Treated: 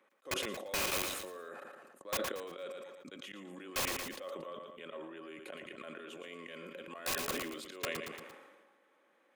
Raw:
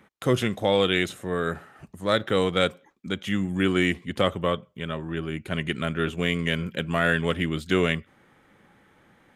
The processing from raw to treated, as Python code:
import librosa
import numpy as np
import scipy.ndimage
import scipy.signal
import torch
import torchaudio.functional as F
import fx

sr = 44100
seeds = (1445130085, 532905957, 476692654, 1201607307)

p1 = scipy.signal.sosfilt(scipy.signal.butter(4, 290.0, 'highpass', fs=sr, output='sos'), x)
p2 = fx.auto_swell(p1, sr, attack_ms=153.0)
p3 = fx.level_steps(p2, sr, step_db=24)
p4 = (np.mod(10.0 ** (28.0 / 20.0) * p3 + 1.0, 2.0) - 1.0) / 10.0 ** (28.0 / 20.0)
p5 = fx.small_body(p4, sr, hz=(550.0, 1100.0, 2500.0), ring_ms=45, db=10)
p6 = p5 + fx.echo_feedback(p5, sr, ms=115, feedback_pct=38, wet_db=-11, dry=0)
p7 = fx.sustainer(p6, sr, db_per_s=38.0)
y = F.gain(torch.from_numpy(p7), -1.5).numpy()